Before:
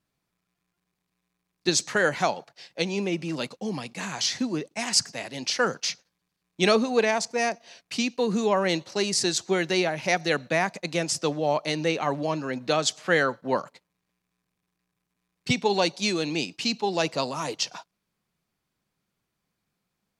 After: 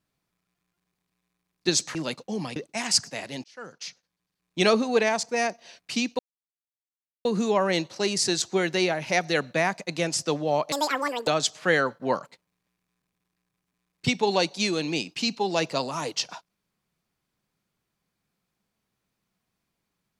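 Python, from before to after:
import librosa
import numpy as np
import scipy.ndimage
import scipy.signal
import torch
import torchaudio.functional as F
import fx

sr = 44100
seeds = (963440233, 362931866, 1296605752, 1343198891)

y = fx.edit(x, sr, fx.cut(start_s=1.95, length_s=1.33),
    fx.cut(start_s=3.89, length_s=0.69),
    fx.fade_in_span(start_s=5.46, length_s=1.22),
    fx.insert_silence(at_s=8.21, length_s=1.06),
    fx.speed_span(start_s=11.68, length_s=1.02, speed=1.84), tone=tone)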